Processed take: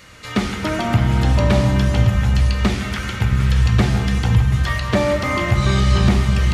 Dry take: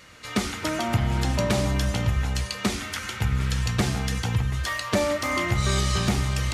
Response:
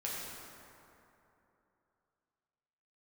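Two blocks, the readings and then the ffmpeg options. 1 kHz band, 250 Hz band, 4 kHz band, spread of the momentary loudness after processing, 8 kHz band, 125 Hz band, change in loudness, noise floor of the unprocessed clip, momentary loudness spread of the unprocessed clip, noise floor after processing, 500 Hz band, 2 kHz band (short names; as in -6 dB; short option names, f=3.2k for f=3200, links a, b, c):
+5.5 dB, +8.0 dB, +2.5 dB, 6 LU, -2.0 dB, +9.5 dB, +7.5 dB, -36 dBFS, 5 LU, -30 dBFS, +6.0 dB, +5.0 dB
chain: -filter_complex "[0:a]acrossover=split=4300[a][b];[b]acompressor=threshold=-44dB:ratio=4:attack=1:release=60[c];[a][c]amix=inputs=2:normalize=0,asplit=2[d][e];[1:a]atrim=start_sample=2205,lowshelf=f=200:g=12[f];[e][f]afir=irnorm=-1:irlink=0,volume=-9dB[g];[d][g]amix=inputs=2:normalize=0,volume=3dB"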